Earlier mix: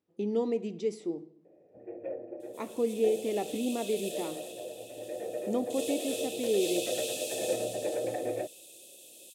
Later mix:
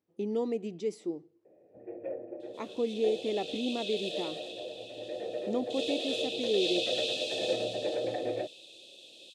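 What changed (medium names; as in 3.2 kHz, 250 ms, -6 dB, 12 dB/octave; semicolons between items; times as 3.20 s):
second sound: add resonant low-pass 3.9 kHz, resonance Q 2.6; reverb: off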